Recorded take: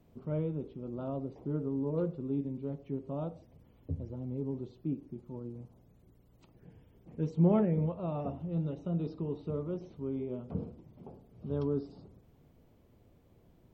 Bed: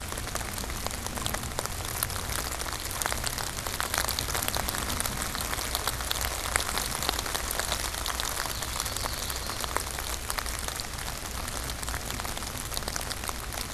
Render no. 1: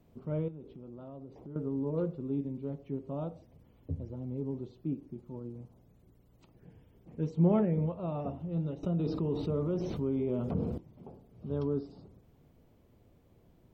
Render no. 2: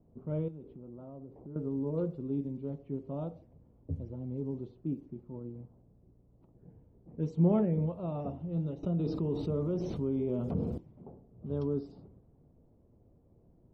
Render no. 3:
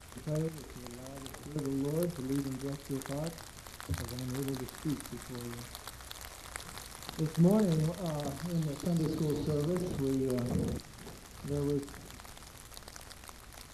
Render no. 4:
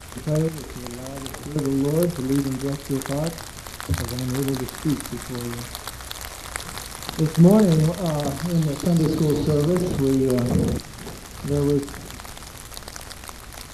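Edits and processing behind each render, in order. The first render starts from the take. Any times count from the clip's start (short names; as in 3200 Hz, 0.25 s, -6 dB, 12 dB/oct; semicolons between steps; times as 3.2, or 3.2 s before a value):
0.48–1.56 compressor 3:1, threshold -45 dBFS; 8.83–10.78 fast leveller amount 70%
low-pass opened by the level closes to 800 Hz, open at -30 dBFS; bell 1900 Hz -5 dB 2.1 oct
add bed -16 dB
gain +12 dB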